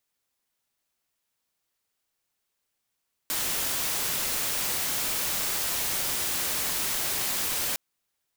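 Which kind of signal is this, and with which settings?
noise white, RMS -28.5 dBFS 4.46 s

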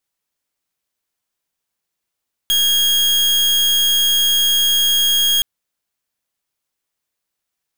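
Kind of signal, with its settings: pulse 3270 Hz, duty 40% -15 dBFS 2.92 s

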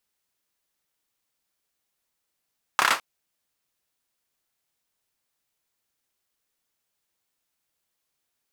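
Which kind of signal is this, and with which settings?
hand clap length 0.21 s, bursts 5, apart 29 ms, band 1200 Hz, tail 0.21 s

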